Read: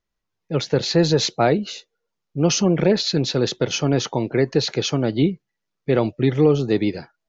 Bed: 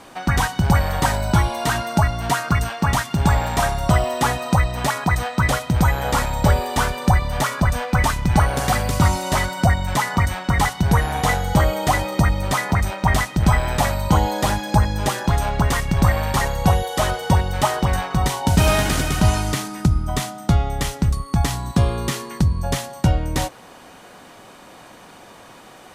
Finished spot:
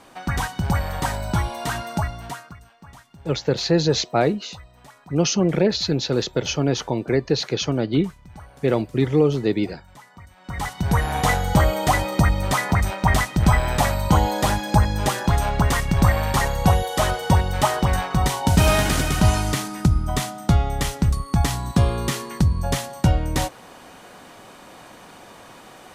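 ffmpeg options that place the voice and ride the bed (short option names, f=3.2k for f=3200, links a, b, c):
-filter_complex "[0:a]adelay=2750,volume=-1.5dB[a];[1:a]volume=20dB,afade=t=out:st=1.9:d=0.66:silence=0.0944061,afade=t=in:st=10.36:d=0.81:silence=0.0530884[b];[a][b]amix=inputs=2:normalize=0"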